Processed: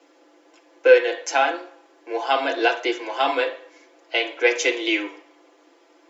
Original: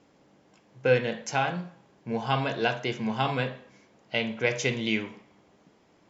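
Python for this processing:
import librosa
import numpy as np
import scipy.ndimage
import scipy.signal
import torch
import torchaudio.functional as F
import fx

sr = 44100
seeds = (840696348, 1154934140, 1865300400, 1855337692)

y = scipy.signal.sosfilt(scipy.signal.cheby1(10, 1.0, 270.0, 'highpass', fs=sr, output='sos'), x)
y = y + 0.78 * np.pad(y, (int(5.9 * sr / 1000.0), 0))[:len(y)]
y = y * librosa.db_to_amplitude(5.5)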